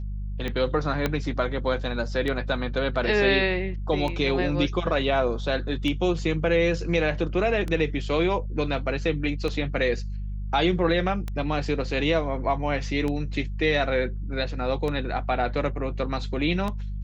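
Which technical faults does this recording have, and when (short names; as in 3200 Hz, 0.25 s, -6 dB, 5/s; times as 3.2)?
hum 50 Hz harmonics 4 -31 dBFS
tick 33 1/3 rpm -17 dBFS
1.06 pop -10 dBFS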